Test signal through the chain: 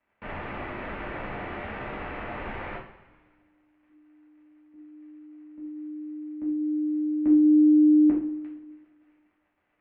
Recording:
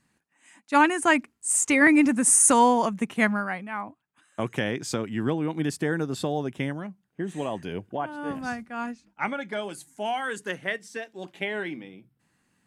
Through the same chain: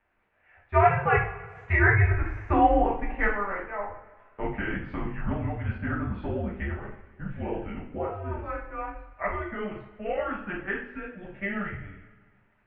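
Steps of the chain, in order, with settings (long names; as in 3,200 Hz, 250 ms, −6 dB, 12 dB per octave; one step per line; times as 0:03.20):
surface crackle 140 per second −47 dBFS
single-sideband voice off tune −200 Hz 170–2,600 Hz
coupled-rooms reverb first 0.46 s, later 1.8 s, from −17 dB, DRR −6.5 dB
level −7.5 dB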